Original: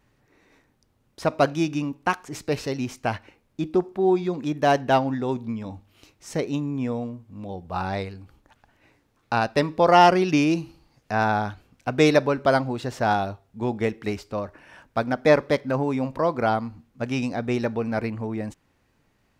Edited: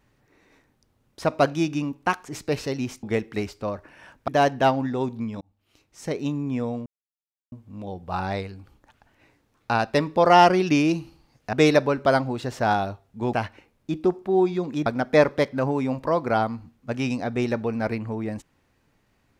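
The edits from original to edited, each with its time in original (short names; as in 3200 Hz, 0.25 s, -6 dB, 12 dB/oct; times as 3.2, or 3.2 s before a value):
3.03–4.56 swap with 13.73–14.98
5.69–6.59 fade in
7.14 insert silence 0.66 s
11.15–11.93 cut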